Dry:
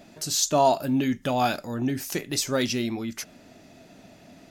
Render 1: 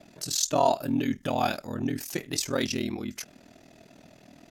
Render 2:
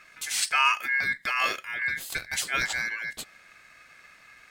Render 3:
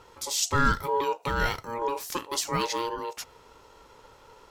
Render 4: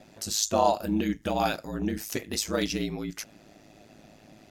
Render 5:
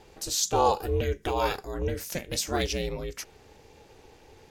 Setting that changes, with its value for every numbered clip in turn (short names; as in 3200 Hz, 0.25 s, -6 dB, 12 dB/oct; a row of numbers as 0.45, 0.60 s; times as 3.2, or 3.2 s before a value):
ring modulator, frequency: 20, 1900, 700, 53, 180 Hz